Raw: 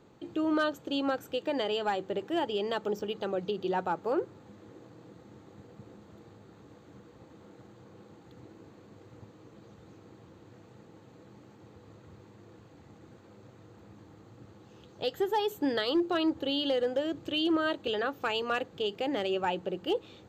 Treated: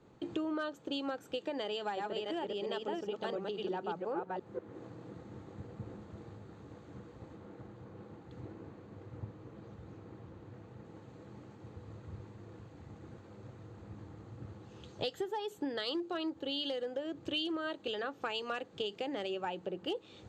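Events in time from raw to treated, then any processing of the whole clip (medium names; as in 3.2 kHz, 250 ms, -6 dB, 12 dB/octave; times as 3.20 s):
1.62–4.59 s: chunks repeated in reverse 347 ms, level -0.5 dB
7.35–10.85 s: treble shelf 5.1 kHz -6 dB
whole clip: steep low-pass 11 kHz; compression 8:1, threshold -43 dBFS; three bands expanded up and down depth 70%; trim +7.5 dB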